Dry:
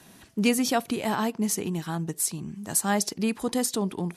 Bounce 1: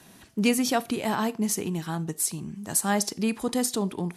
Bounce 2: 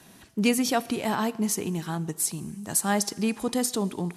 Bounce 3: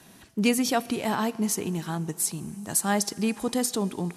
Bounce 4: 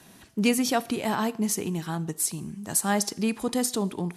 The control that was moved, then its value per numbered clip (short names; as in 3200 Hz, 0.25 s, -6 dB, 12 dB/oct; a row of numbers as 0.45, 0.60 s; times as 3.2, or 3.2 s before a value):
Schroeder reverb, RT60: 0.33, 1.7, 3.9, 0.7 s